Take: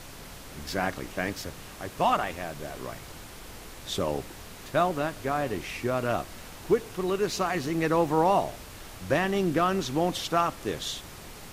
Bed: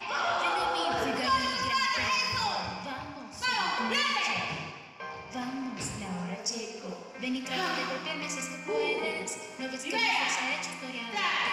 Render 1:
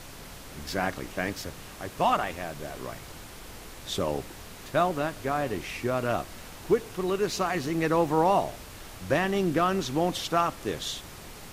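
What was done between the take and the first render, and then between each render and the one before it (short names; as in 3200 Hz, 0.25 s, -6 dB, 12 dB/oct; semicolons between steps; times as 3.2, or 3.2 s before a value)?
nothing audible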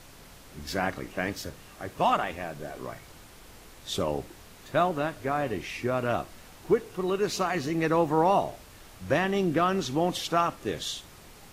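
noise print and reduce 6 dB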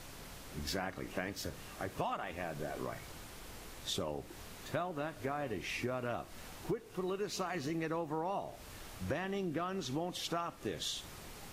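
compressor 6:1, threshold -35 dBFS, peak gain reduction 16.5 dB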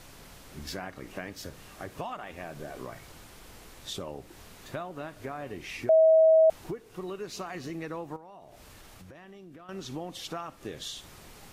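5.89–6.5 bleep 641 Hz -15.5 dBFS; 8.16–9.69 compressor, threshold -46 dBFS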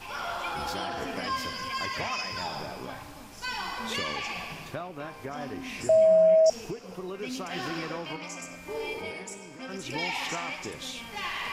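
add bed -5 dB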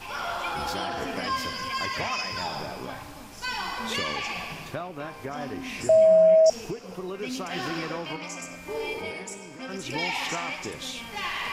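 gain +2.5 dB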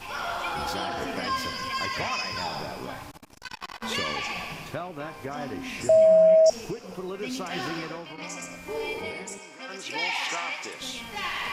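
3.11–3.83 core saturation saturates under 1400 Hz; 7.62–8.18 fade out, to -9 dB; 9.38–10.81 weighting filter A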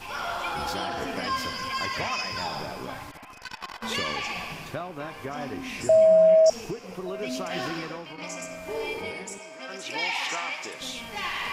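band-limited delay 1.17 s, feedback 58%, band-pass 1400 Hz, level -17.5 dB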